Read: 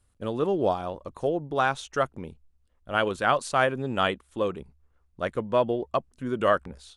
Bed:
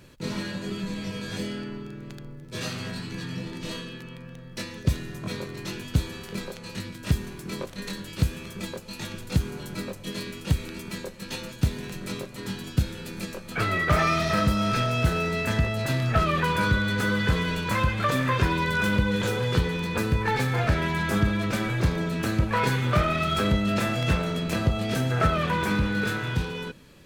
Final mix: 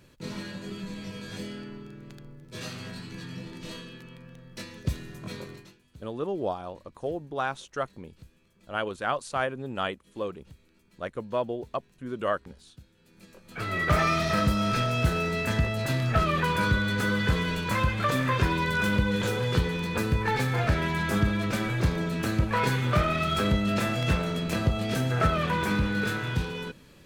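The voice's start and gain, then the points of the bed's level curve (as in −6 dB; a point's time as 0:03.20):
5.80 s, −5.5 dB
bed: 0:05.53 −5.5 dB
0:05.79 −27.5 dB
0:12.93 −27.5 dB
0:13.83 −1.5 dB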